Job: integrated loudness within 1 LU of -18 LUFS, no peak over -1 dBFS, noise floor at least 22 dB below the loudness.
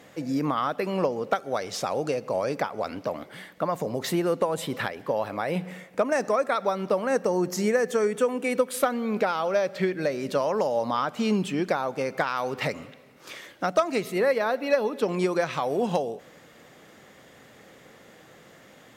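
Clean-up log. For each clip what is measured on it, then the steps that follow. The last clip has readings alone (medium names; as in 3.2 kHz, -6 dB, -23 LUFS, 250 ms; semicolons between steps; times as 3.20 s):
loudness -27.0 LUFS; peak level -11.5 dBFS; loudness target -18.0 LUFS
-> trim +9 dB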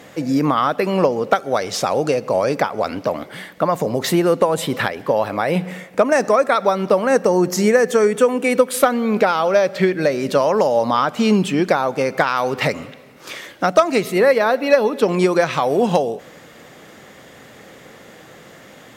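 loudness -18.0 LUFS; peak level -2.5 dBFS; noise floor -43 dBFS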